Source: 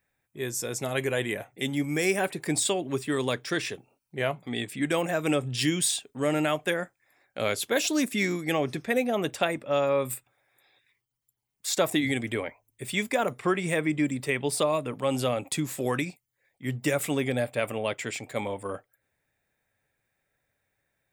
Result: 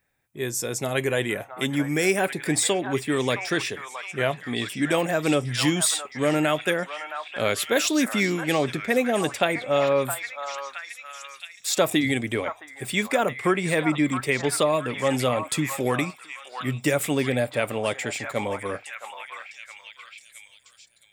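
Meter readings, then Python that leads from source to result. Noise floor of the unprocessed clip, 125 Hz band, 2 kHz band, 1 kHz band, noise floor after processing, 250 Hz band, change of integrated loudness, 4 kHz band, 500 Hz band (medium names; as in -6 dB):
-81 dBFS, +3.5 dB, +4.5 dB, +4.5 dB, -53 dBFS, +3.5 dB, +3.5 dB, +4.0 dB, +3.5 dB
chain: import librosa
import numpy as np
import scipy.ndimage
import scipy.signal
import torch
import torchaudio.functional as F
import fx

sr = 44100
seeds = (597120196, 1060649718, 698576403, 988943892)

y = fx.echo_stepped(x, sr, ms=667, hz=1100.0, octaves=0.7, feedback_pct=70, wet_db=-4)
y = F.gain(torch.from_numpy(y), 3.5).numpy()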